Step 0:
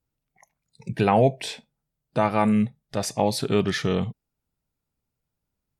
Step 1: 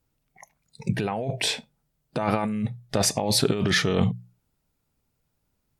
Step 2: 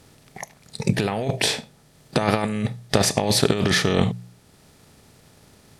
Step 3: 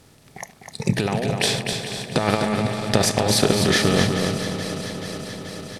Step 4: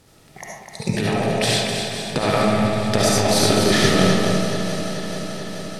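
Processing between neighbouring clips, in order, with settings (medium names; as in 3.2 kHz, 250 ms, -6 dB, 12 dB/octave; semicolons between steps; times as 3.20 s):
hum notches 60/120/180 Hz; compressor with a negative ratio -27 dBFS, ratio -1; trim +3 dB
spectral levelling over time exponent 0.6; transient shaper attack +5 dB, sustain -3 dB; trim -1 dB
backward echo that repeats 216 ms, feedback 85%, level -12 dB; on a send: feedback delay 252 ms, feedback 40%, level -6 dB
reverberation RT60 0.80 s, pre-delay 30 ms, DRR -3.5 dB; trim -2.5 dB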